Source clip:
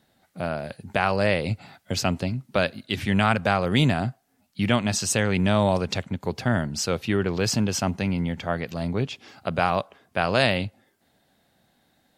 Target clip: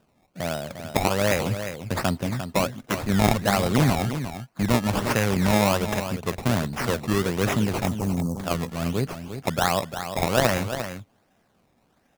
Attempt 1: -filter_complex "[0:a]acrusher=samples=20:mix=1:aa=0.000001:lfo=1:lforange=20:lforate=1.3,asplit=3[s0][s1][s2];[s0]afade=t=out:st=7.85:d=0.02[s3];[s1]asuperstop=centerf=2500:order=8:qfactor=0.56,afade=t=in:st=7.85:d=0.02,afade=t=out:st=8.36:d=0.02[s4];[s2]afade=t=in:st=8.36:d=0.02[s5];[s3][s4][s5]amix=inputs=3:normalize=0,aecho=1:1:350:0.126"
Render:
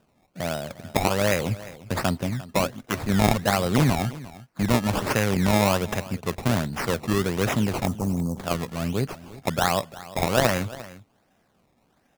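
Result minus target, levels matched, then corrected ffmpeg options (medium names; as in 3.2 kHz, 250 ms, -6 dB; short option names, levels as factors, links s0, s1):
echo-to-direct -8.5 dB
-filter_complex "[0:a]acrusher=samples=20:mix=1:aa=0.000001:lfo=1:lforange=20:lforate=1.3,asplit=3[s0][s1][s2];[s0]afade=t=out:st=7.85:d=0.02[s3];[s1]asuperstop=centerf=2500:order=8:qfactor=0.56,afade=t=in:st=7.85:d=0.02,afade=t=out:st=8.36:d=0.02[s4];[s2]afade=t=in:st=8.36:d=0.02[s5];[s3][s4][s5]amix=inputs=3:normalize=0,aecho=1:1:350:0.335"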